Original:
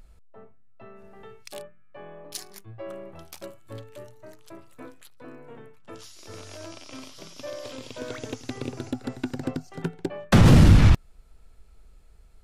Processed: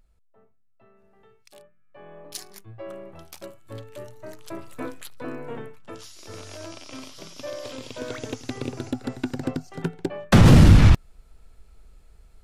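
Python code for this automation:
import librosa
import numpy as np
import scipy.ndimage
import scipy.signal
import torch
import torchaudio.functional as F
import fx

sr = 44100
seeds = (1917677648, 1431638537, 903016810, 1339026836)

y = fx.gain(x, sr, db=fx.line((1.59, -11.0), (2.18, 0.0), (3.61, 0.0), (4.68, 10.0), (5.57, 10.0), (5.97, 2.0)))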